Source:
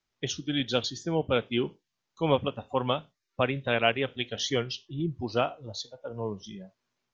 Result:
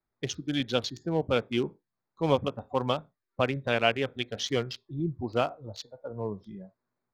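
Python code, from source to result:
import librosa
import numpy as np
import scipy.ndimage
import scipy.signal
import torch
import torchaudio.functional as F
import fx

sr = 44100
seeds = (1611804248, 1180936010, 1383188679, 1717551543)

y = fx.wiener(x, sr, points=15)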